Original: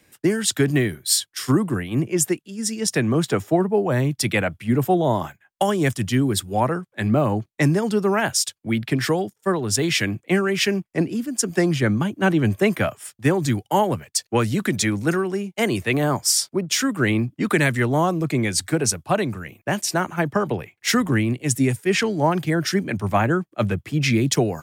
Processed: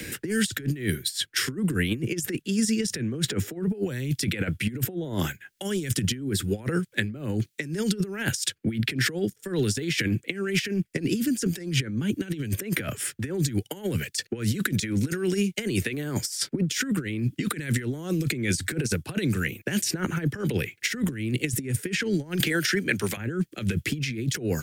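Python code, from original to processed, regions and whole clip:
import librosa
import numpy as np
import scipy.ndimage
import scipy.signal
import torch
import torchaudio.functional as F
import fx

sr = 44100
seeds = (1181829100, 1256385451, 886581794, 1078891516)

y = fx.chain(x, sr, fx.highpass(hz=730.0, slope=6),
    fx.band_squash(depth_pct=100), at=(22.4, 23.17))
y = fx.over_compress(y, sr, threshold_db=-26.0, ratio=-0.5)
y = fx.band_shelf(y, sr, hz=850.0, db=-13.5, octaves=1.2)
y = fx.band_squash(y, sr, depth_pct=70)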